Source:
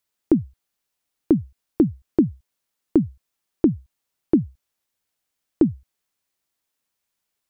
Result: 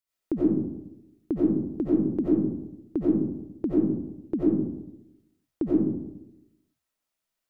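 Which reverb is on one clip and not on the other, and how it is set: digital reverb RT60 0.91 s, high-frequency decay 0.35×, pre-delay 50 ms, DRR -8 dB; gain -11.5 dB

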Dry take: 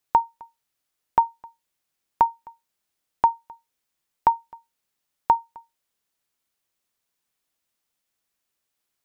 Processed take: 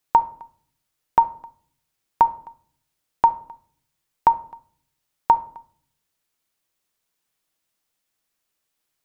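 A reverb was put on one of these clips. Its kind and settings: shoebox room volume 750 m³, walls furnished, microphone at 0.57 m; gain +2 dB

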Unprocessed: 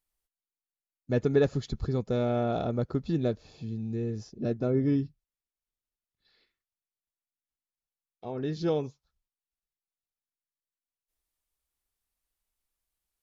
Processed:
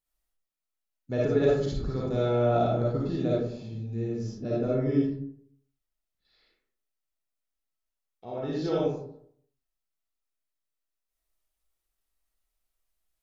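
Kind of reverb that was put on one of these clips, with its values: digital reverb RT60 0.65 s, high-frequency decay 0.45×, pre-delay 15 ms, DRR -6 dB; gain -4.5 dB

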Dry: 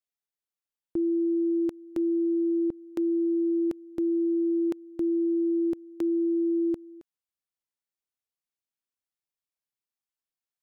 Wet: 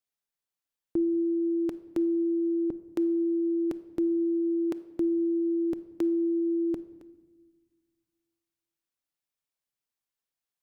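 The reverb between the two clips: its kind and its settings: shoebox room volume 1000 m³, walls mixed, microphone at 0.34 m; gain +1.5 dB

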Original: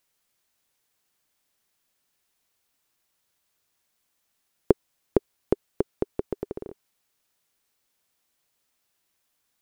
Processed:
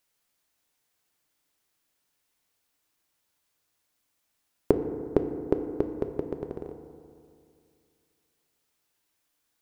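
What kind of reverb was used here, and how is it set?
FDN reverb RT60 2.4 s, low-frequency decay 1.05×, high-frequency decay 0.3×, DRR 6 dB; gain -2 dB

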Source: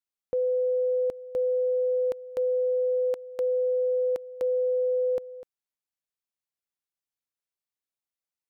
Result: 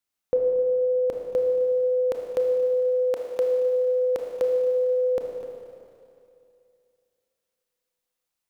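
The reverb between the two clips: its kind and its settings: Schroeder reverb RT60 2.6 s, combs from 25 ms, DRR 1 dB; gain +6.5 dB

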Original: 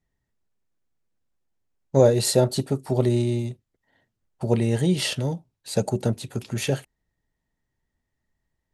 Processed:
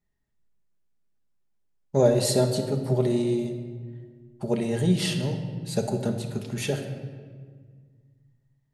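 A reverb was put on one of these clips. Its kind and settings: shoebox room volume 2100 m³, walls mixed, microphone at 1.3 m; gain -4 dB

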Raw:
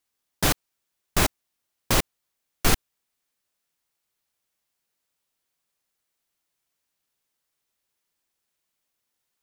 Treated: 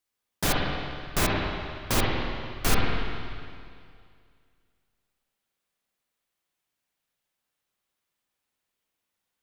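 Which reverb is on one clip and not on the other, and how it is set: spring tank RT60 2.2 s, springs 49/53/58 ms, chirp 20 ms, DRR -3 dB; gain -4.5 dB

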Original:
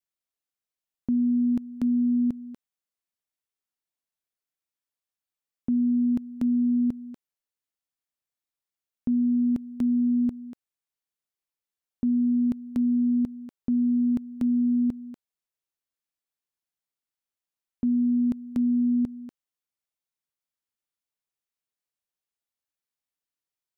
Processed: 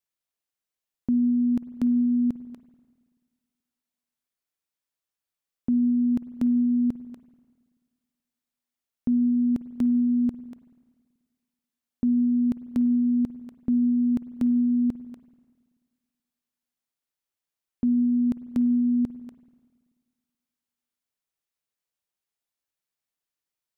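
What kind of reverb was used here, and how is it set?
spring tank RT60 1.7 s, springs 48/54 ms, chirp 50 ms, DRR 14 dB; gain +1.5 dB

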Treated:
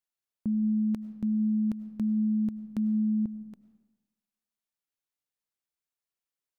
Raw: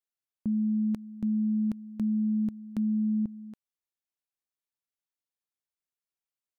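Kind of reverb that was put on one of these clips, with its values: digital reverb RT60 1.1 s, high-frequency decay 0.7×, pre-delay 60 ms, DRR 14 dB

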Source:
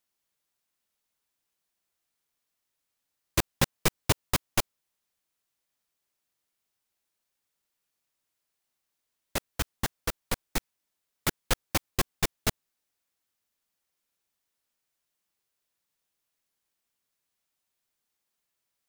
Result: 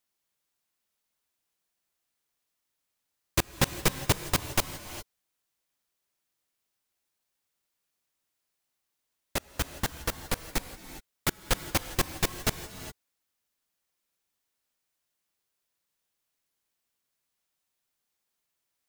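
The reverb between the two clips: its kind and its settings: non-linear reverb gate 0.43 s rising, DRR 11 dB

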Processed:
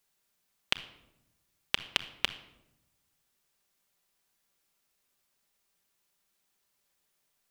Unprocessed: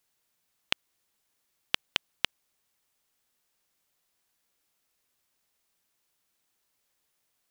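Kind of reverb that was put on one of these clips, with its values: shoebox room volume 3000 m³, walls furnished, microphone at 1.2 m; gain -1 dB

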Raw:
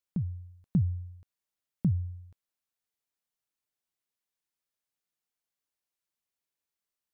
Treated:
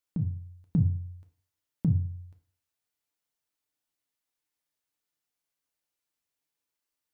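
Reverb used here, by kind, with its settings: FDN reverb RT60 0.48 s, low-frequency decay 0.95×, high-frequency decay 0.95×, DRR 4 dB; gain +1 dB

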